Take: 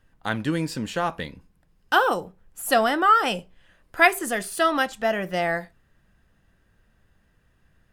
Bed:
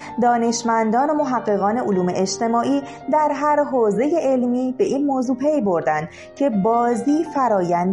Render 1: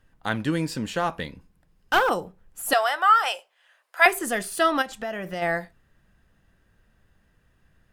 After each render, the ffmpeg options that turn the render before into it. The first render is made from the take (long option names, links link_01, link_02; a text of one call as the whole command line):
ffmpeg -i in.wav -filter_complex "[0:a]asettb=1/sr,asplit=3[link_01][link_02][link_03];[link_01]atrim=end=0.994[link_04];[link_02]atrim=start=0.99:end=2.11,asetpts=PTS-STARTPTS,afade=type=in:duration=0.004:curve=qsin,afade=type=out:start_time=1.116:duration=0.004:curve=qsin,aeval=exprs='clip(val(0),-1,0.126)':channel_layout=same[link_05];[link_03]atrim=start=2.106[link_06];[link_04][link_05]acrossfade=duration=0.004:curve1=hsin:curve2=qsin[link_07];[link_07][link_06]acrossfade=duration=0.004:curve1=qsin:curve2=hsin,asettb=1/sr,asplit=3[link_08][link_09][link_10];[link_08]atrim=end=2.734[link_11];[link_09]atrim=start=2.73:end=4.06,asetpts=PTS-STARTPTS,afade=type=in:duration=0.004:curve=qsin,afade=type=out:start_time=1.326:duration=0.004:curve=qsin,highpass=frequency=640:width=0.5412,highpass=frequency=640:width=1.3066[link_12];[link_10]atrim=start=4.056[link_13];[link_11][link_12]acrossfade=duration=0.004:curve1=hsin:curve2=qsin[link_14];[link_14][link_13]acrossfade=duration=0.004:curve1=qsin:curve2=hsin,asplit=3[link_15][link_16][link_17];[link_15]afade=type=out:start_time=4.81:duration=0.02[link_18];[link_16]acompressor=threshold=-27dB:ratio=6:attack=3.2:release=140:knee=1:detection=peak,afade=type=in:start_time=4.81:duration=0.02,afade=type=out:start_time=5.41:duration=0.02[link_19];[link_17]afade=type=in:start_time=5.41:duration=0.02[link_20];[link_18][link_19][link_20]amix=inputs=3:normalize=0" out.wav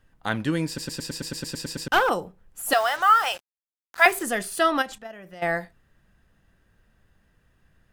ffmpeg -i in.wav -filter_complex "[0:a]asettb=1/sr,asplit=3[link_01][link_02][link_03];[link_01]atrim=end=2.704[link_04];[link_02]atrim=start=2.7:end=4.23,asetpts=PTS-STARTPTS,afade=type=in:duration=0.004:curve=qsin,afade=type=out:start_time=1.526:duration=0.004:curve=qsin,acrusher=bits=5:mix=0:aa=0.5[link_05];[link_03]atrim=start=4.226[link_06];[link_04][link_05]acrossfade=duration=0.004:curve1=hsin:curve2=qsin[link_07];[link_07][link_06]acrossfade=duration=0.004:curve1=qsin:curve2=hsin,asettb=1/sr,asplit=3[link_08][link_09][link_10];[link_08]atrim=end=4.984[link_11];[link_09]atrim=start=4.98:end=5.43,asetpts=PTS-STARTPTS,afade=type=in:duration=0.004:curve=qsin,afade=type=out:start_time=0.446:duration=0.004:curve=qsin,agate=range=-11dB:threshold=-29dB:ratio=16:release=100:detection=peak[link_12];[link_10]atrim=start=5.426[link_13];[link_11][link_12]acrossfade=duration=0.004:curve1=hsin:curve2=qsin[link_14];[link_14][link_13]acrossfade=duration=0.004:curve1=qsin:curve2=hsin,asplit=12[link_15][link_16][link_17][link_18][link_19][link_20][link_21][link_22][link_23][link_24][link_25][link_26];[link_15]atrim=end=0.782[link_27];[link_16]atrim=start=0.668:end=0.782[link_28];[link_17]atrim=start=0.668:end=0.782[link_29];[link_18]atrim=start=0.668:end=0.782[link_30];[link_19]atrim=start=0.668:end=0.782[link_31];[link_20]atrim=start=0.668:end=0.782[link_32];[link_21]atrim=start=0.668:end=0.782[link_33];[link_22]atrim=start=0.668:end=0.782[link_34];[link_23]atrim=start=0.668:end=0.782[link_35];[link_24]atrim=start=0.668:end=0.782[link_36];[link_25]atrim=start=0.668:end=0.782[link_37];[link_26]atrim=start=1.878[link_38];[link_27][link_28]acrossfade=duration=0.004:curve1=hsin:curve2=hsin[link_39];[link_39][link_29]acrossfade=duration=0.004:curve1=hsin:curve2=hsin[link_40];[link_40][link_30]acrossfade=duration=0.004:curve1=hsin:curve2=hsin[link_41];[link_41][link_31]acrossfade=duration=0.004:curve1=hsin:curve2=hsin[link_42];[link_42][link_32]acrossfade=duration=0.004:curve1=hsin:curve2=hsin[link_43];[link_43][link_33]acrossfade=duration=0.004:curve1=hsin:curve2=hsin[link_44];[link_44][link_34]acrossfade=duration=0.004:curve1=hsin:curve2=hsin[link_45];[link_45][link_35]acrossfade=duration=0.004:curve1=hsin:curve2=hsin[link_46];[link_46][link_36]acrossfade=duration=0.004:curve1=hsin:curve2=hsin[link_47];[link_47][link_37]acrossfade=duration=0.004:curve1=hsin:curve2=hsin[link_48];[link_48][link_38]acrossfade=duration=0.004:curve1=hsin:curve2=hsin" out.wav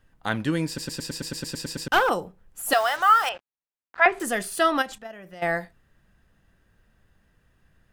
ffmpeg -i in.wav -filter_complex "[0:a]asettb=1/sr,asplit=3[link_01][link_02][link_03];[link_01]atrim=end=3.294[link_04];[link_02]atrim=start=3.29:end=4.2,asetpts=PTS-STARTPTS,afade=type=in:duration=0.004:curve=qsin,afade=type=out:start_time=0.906:duration=0.004:curve=qsin,lowpass=2200[link_05];[link_03]atrim=start=4.196[link_06];[link_04][link_05]acrossfade=duration=0.004:curve1=hsin:curve2=qsin[link_07];[link_07][link_06]acrossfade=duration=0.004:curve1=qsin:curve2=hsin" out.wav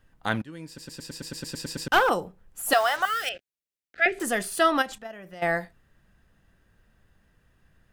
ffmpeg -i in.wav -filter_complex "[0:a]asettb=1/sr,asplit=3[link_01][link_02][link_03];[link_01]atrim=end=3.054[link_04];[link_02]atrim=start=3.05:end=4.19,asetpts=PTS-STARTPTS,afade=type=in:duration=0.004:curve=qsin,afade=type=out:start_time=1.136:duration=0.004:curve=qsin,asuperstop=centerf=1000:order=4:qfactor=0.9[link_05];[link_03]atrim=start=4.186[link_06];[link_04][link_05]acrossfade=duration=0.004:curve1=hsin:curve2=qsin[link_07];[link_07][link_06]acrossfade=duration=0.004:curve1=qsin:curve2=hsin,asplit=2[link_08][link_09];[link_08]atrim=end=0.42,asetpts=PTS-STARTPTS,afade=type=out:start_time=0.416:duration=0.004:curve=hsin:silence=0.0794328[link_10];[link_09]atrim=start=0.42,asetpts=PTS-STARTPTS,afade=type=in:duration=1.53:silence=0.0794328[link_11];[link_10][link_11]concat=n=2:v=0:a=1" out.wav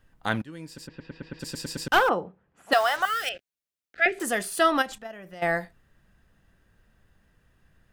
ffmpeg -i in.wav -filter_complex "[0:a]asplit=3[link_01][link_02][link_03];[link_01]afade=type=out:start_time=0.86:duration=0.02[link_04];[link_02]lowpass=frequency=2800:width=0.5412,lowpass=frequency=2800:width=1.3066,afade=type=in:start_time=0.86:duration=0.02,afade=type=out:start_time=1.39:duration=0.02[link_05];[link_03]afade=type=in:start_time=1.39:duration=0.02[link_06];[link_04][link_05][link_06]amix=inputs=3:normalize=0,asplit=3[link_07][link_08][link_09];[link_07]afade=type=out:start_time=2.08:duration=0.02[link_10];[link_08]highpass=120,lowpass=2200,afade=type=in:start_time=2.08:duration=0.02,afade=type=out:start_time=2.71:duration=0.02[link_11];[link_09]afade=type=in:start_time=2.71:duration=0.02[link_12];[link_10][link_11][link_12]amix=inputs=3:normalize=0,asettb=1/sr,asplit=3[link_13][link_14][link_15];[link_13]atrim=end=4.114[link_16];[link_14]atrim=start=4.11:end=4.59,asetpts=PTS-STARTPTS,afade=type=in:duration=0.004:curve=qsin,afade=type=out:start_time=0.476:duration=0.004:curve=qsin,lowshelf=frequency=92:gain=-11[link_17];[link_15]atrim=start=4.586[link_18];[link_16][link_17]acrossfade=duration=0.004:curve1=hsin:curve2=qsin[link_19];[link_19][link_18]acrossfade=duration=0.004:curve1=qsin:curve2=hsin" out.wav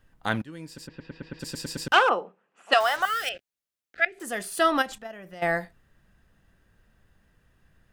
ffmpeg -i in.wav -filter_complex "[0:a]asplit=3[link_01][link_02][link_03];[link_01]afade=type=out:start_time=1.92:duration=0.02[link_04];[link_02]highpass=frequency=240:width=0.5412,highpass=frequency=240:width=1.3066,equalizer=frequency=300:width_type=q:width=4:gain=-8,equalizer=frequency=1200:width_type=q:width=4:gain=4,equalizer=frequency=2700:width_type=q:width=4:gain=8,lowpass=frequency=9100:width=0.5412,lowpass=frequency=9100:width=1.3066,afade=type=in:start_time=1.92:duration=0.02,afade=type=out:start_time=2.79:duration=0.02[link_05];[link_03]afade=type=in:start_time=2.79:duration=0.02[link_06];[link_04][link_05][link_06]amix=inputs=3:normalize=0,asplit=2[link_07][link_08];[link_07]atrim=end=4.05,asetpts=PTS-STARTPTS,afade=type=out:start_time=4.046:duration=0.004:curve=hsin:silence=0.0891251[link_09];[link_08]atrim=start=4.05,asetpts=PTS-STARTPTS,afade=type=in:duration=0.81:curve=qsin:silence=0.0891251[link_10];[link_09][link_10]concat=n=2:v=0:a=1" out.wav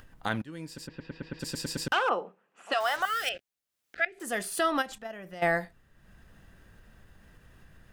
ffmpeg -i in.wav -af "acompressor=mode=upward:threshold=-45dB:ratio=2.5,alimiter=limit=-16dB:level=0:latency=1:release=298" out.wav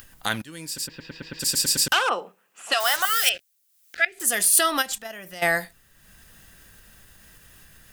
ffmpeg -i in.wav -af "crystalizer=i=7:c=0" out.wav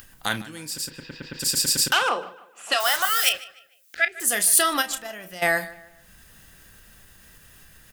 ffmpeg -i in.wav -filter_complex "[0:a]asplit=2[link_01][link_02];[link_02]adelay=33,volume=-12dB[link_03];[link_01][link_03]amix=inputs=2:normalize=0,asplit=2[link_04][link_05];[link_05]adelay=151,lowpass=frequency=3600:poles=1,volume=-17.5dB,asplit=2[link_06][link_07];[link_07]adelay=151,lowpass=frequency=3600:poles=1,volume=0.39,asplit=2[link_08][link_09];[link_09]adelay=151,lowpass=frequency=3600:poles=1,volume=0.39[link_10];[link_04][link_06][link_08][link_10]amix=inputs=4:normalize=0" out.wav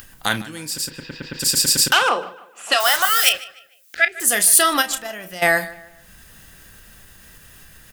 ffmpeg -i in.wav -af "volume=5dB,alimiter=limit=-1dB:level=0:latency=1" out.wav